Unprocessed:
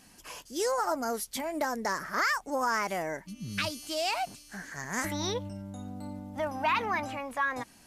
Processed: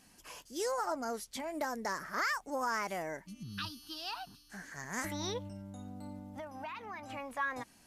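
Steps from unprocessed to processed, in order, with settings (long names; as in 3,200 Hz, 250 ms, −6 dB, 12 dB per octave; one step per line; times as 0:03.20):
0:00.86–0:01.48: Bessel low-pass filter 8,900 Hz, order 2
0:03.43–0:04.50: phaser with its sweep stopped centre 2,200 Hz, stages 6
0:06.30–0:07.10: downward compressor 6 to 1, threshold −36 dBFS, peak gain reduction 12 dB
level −5.5 dB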